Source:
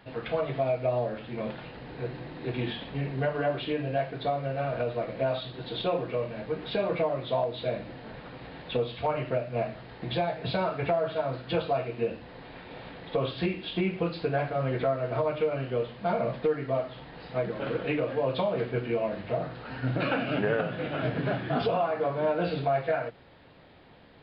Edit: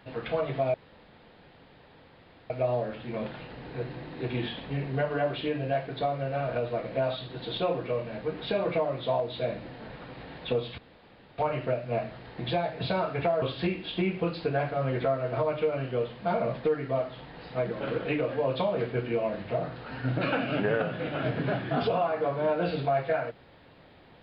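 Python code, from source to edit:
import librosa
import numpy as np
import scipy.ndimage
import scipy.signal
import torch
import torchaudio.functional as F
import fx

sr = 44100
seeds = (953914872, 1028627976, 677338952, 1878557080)

y = fx.edit(x, sr, fx.insert_room_tone(at_s=0.74, length_s=1.76),
    fx.insert_room_tone(at_s=9.02, length_s=0.6),
    fx.cut(start_s=11.06, length_s=2.15), tone=tone)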